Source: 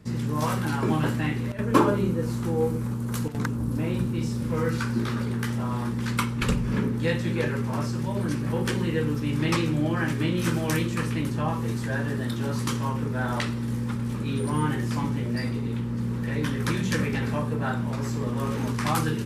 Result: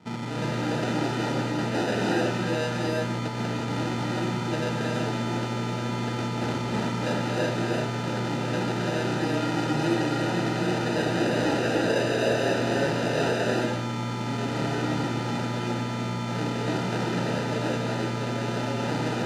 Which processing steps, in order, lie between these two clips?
0:10.85–0:13.32: flat-topped bell 900 Hz +12.5 dB 2.7 octaves
decimation without filtering 40×
soft clipping −25 dBFS, distortion −9 dB
band-pass filter 190–5,600 Hz
reverb whose tail is shaped and stops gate 390 ms rising, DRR −2.5 dB
level +1.5 dB

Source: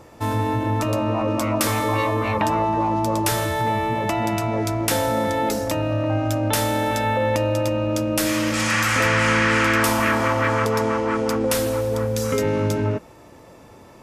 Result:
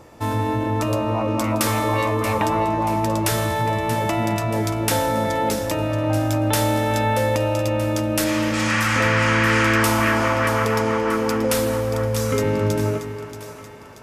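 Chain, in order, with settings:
0:08.24–0:09.46: high-shelf EQ 7,700 Hz −9 dB
on a send: echo with a time of its own for lows and highs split 750 Hz, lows 272 ms, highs 631 ms, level −10.5 dB

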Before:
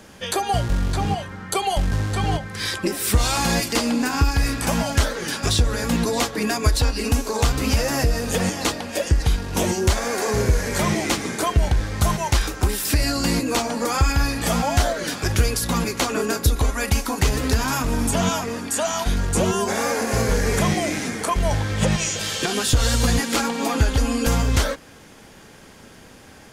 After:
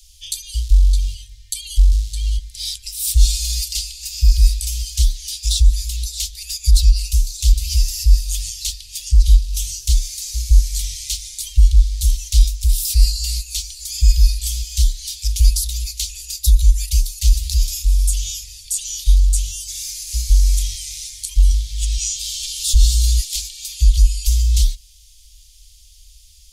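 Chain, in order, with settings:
inverse Chebyshev band-stop filter 120–1,500 Hz, stop band 50 dB
low shelf with overshoot 120 Hz +9 dB, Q 1.5
level +3.5 dB

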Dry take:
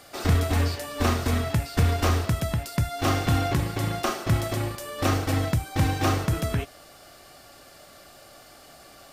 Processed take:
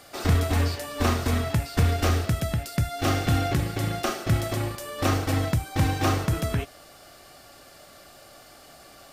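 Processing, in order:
0:01.87–0:04.48: parametric band 1,000 Hz −11 dB 0.2 octaves

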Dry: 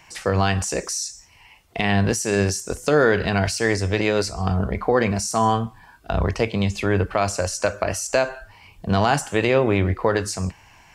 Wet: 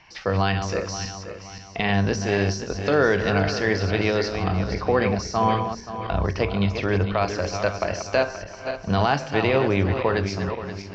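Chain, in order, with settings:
feedback delay that plays each chunk backwards 264 ms, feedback 61%, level −8 dB
Butterworth low-pass 5,600 Hz 48 dB per octave
hum removal 76.54 Hz, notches 7
level −2 dB

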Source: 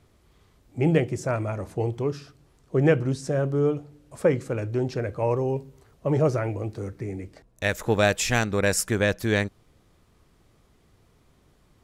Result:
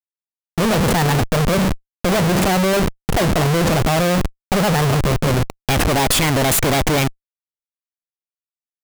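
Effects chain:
leveller curve on the samples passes 3
reversed playback
upward compression, threshold −22 dBFS
reversed playback
change of speed 1.34×
comparator with hysteresis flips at −25 dBFS
level +2.5 dB

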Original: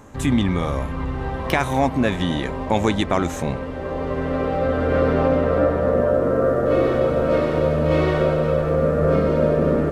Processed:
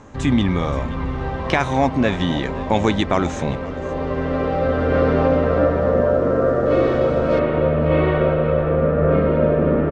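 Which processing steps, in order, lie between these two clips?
low-pass filter 6,800 Hz 24 dB per octave, from 0:07.39 3,100 Hz
single-tap delay 525 ms −17.5 dB
level +1.5 dB

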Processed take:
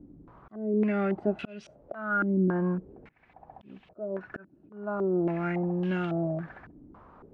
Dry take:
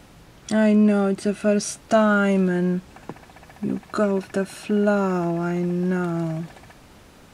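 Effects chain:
volume swells 624 ms
low-pass on a step sequencer 3.6 Hz 300–3,000 Hz
level −6.5 dB

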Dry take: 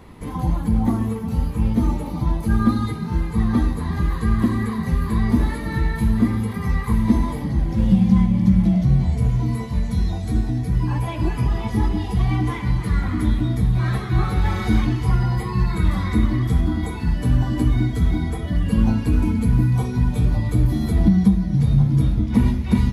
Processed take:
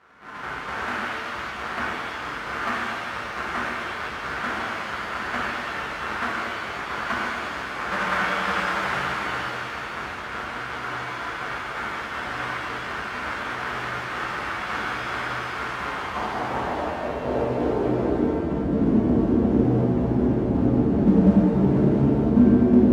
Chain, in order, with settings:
each half-wave held at its own peak
band-pass filter sweep 1,400 Hz → 260 Hz, 0:15.67–0:18.53
reverb with rising layers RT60 2.3 s, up +7 semitones, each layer −8 dB, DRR −5.5 dB
level −4.5 dB

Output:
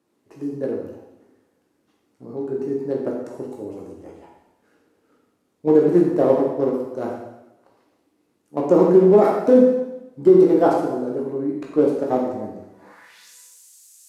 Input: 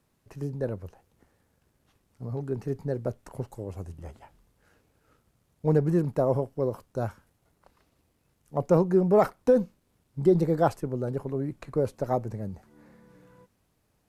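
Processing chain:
first-order pre-emphasis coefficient 0.97
in parallel at −5.5 dB: bit reduction 7 bits
on the sum: band-pass filter sweep 300 Hz → 7,300 Hz, 0:12.66–0:13.33
convolution reverb RT60 0.95 s, pre-delay 7 ms, DRR −2.5 dB
boost into a limiter +35 dB
level −3 dB

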